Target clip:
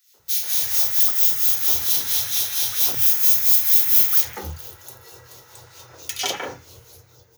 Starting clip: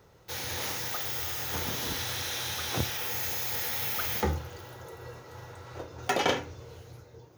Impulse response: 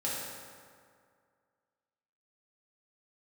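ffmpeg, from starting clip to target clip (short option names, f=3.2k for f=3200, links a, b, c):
-filter_complex "[0:a]acrossover=split=1300[a][b];[a]aeval=exprs='val(0)*(1-0.7/2+0.7/2*cos(2*PI*4.4*n/s))':c=same[c];[b]aeval=exprs='val(0)*(1-0.7/2-0.7/2*cos(2*PI*4.4*n/s))':c=same[d];[c][d]amix=inputs=2:normalize=0,crystalizer=i=6.5:c=0,acrossover=split=200|2100[e][f][g];[f]adelay=140[h];[e]adelay=190[i];[i][h][g]amix=inputs=3:normalize=0,volume=-1dB"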